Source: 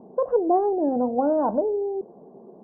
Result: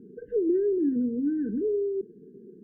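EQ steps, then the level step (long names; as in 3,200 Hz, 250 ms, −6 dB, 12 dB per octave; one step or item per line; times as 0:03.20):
linear-phase brick-wall band-stop 480–1,500 Hz
parametric band 490 Hz −4 dB 0.37 octaves
0.0 dB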